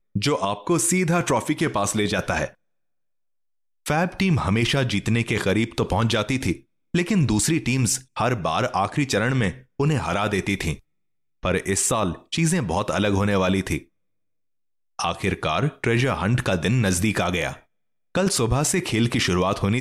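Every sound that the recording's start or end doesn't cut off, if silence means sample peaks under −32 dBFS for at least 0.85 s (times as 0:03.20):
0:03.86–0:13.78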